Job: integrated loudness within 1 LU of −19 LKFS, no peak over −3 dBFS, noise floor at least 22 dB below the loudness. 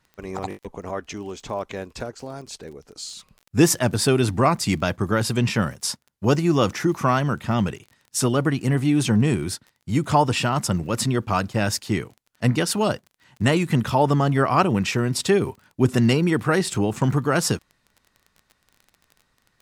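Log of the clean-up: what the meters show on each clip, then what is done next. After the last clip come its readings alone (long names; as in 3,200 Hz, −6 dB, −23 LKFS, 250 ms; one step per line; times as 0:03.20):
crackle rate 24 per second; integrated loudness −22.0 LKFS; sample peak −4.5 dBFS; target loudness −19.0 LKFS
→ click removal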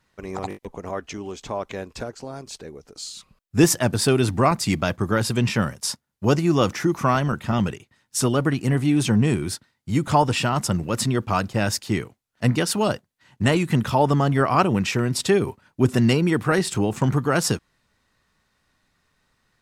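crackle rate 0.051 per second; integrated loudness −22.0 LKFS; sample peak −3.5 dBFS; target loudness −19.0 LKFS
→ level +3 dB
brickwall limiter −3 dBFS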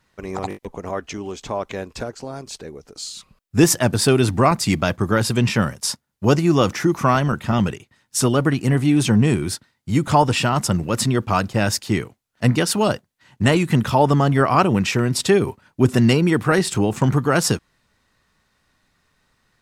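integrated loudness −19.0 LKFS; sample peak −3.0 dBFS; background noise floor −68 dBFS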